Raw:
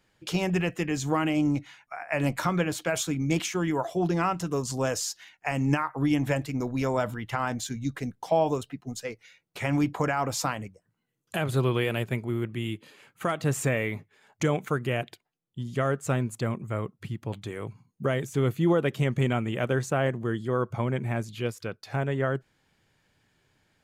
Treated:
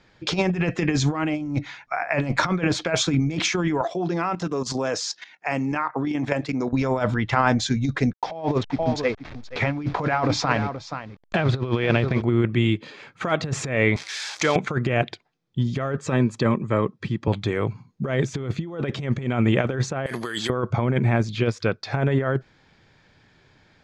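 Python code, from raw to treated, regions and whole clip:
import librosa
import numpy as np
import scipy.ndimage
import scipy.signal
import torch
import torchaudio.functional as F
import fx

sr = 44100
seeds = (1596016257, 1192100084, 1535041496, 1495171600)

y = fx.chain(x, sr, fx.highpass(hz=190.0, slope=12),
    fx.level_steps(step_db=12), at=(3.81, 6.73))
y = fx.chain(y, sr, fx.delta_hold(step_db=-43.5),
    fx.lowpass(hz=5000.0, slope=12),
    fx.echo_single(ms=476, db=-14.5), at=(8.13, 12.22))
y = fx.chain(y, sr, fx.crossing_spikes(level_db=-26.0),
    fx.highpass(hz=1000.0, slope=6), at=(13.96, 14.56))
y = fx.chain(y, sr, fx.highpass(hz=130.0, slope=12),
    fx.notch_comb(f0_hz=710.0), at=(15.97, 17.28))
y = fx.chain(y, sr, fx.weighting(curve='ITU-R 468'),
    fx.over_compress(threshold_db=-41.0, ratio=-1.0),
    fx.resample_bad(factor=4, down='none', up='zero_stuff'), at=(20.06, 20.5))
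y = scipy.signal.sosfilt(scipy.signal.butter(4, 5600.0, 'lowpass', fs=sr, output='sos'), y)
y = fx.notch(y, sr, hz=2900.0, q=11.0)
y = fx.over_compress(y, sr, threshold_db=-29.0, ratio=-0.5)
y = y * librosa.db_to_amplitude(8.5)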